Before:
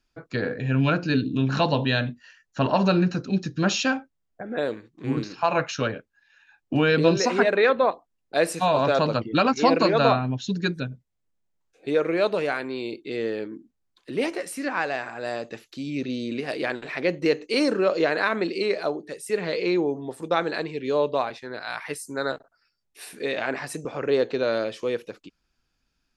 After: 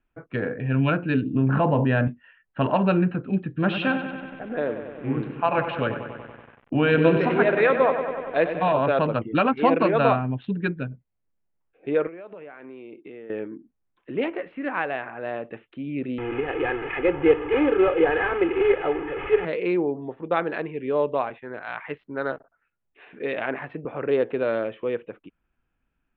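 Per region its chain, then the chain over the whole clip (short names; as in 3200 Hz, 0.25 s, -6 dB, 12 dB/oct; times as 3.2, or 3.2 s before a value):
1.35–2.08 LPF 1600 Hz + fast leveller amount 70%
3.49–8.73 LPF 10000 Hz + lo-fi delay 95 ms, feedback 80%, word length 7-bit, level -9 dB
12.07–13.3 HPF 130 Hz + compressor 16:1, threshold -36 dBFS
16.18–19.45 delta modulation 16 kbps, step -27.5 dBFS + comb 2.4 ms, depth 98%
whole clip: Wiener smoothing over 9 samples; steep low-pass 3300 Hz 48 dB/oct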